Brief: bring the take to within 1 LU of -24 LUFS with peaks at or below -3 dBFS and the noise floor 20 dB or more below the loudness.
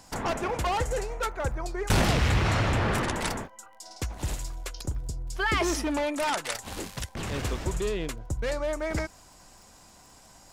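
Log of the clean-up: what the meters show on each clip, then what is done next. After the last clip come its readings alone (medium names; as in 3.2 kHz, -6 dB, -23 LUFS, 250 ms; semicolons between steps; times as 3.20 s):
tick rate 27 per s; loudness -29.5 LUFS; peak level -12.5 dBFS; loudness target -24.0 LUFS
-> de-click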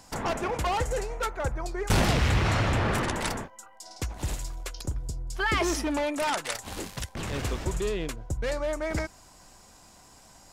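tick rate 0 per s; loudness -29.5 LUFS; peak level -12.5 dBFS; loudness target -24.0 LUFS
-> trim +5.5 dB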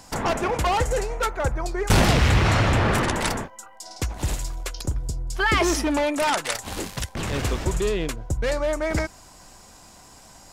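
loudness -24.0 LUFS; peak level -7.0 dBFS; noise floor -49 dBFS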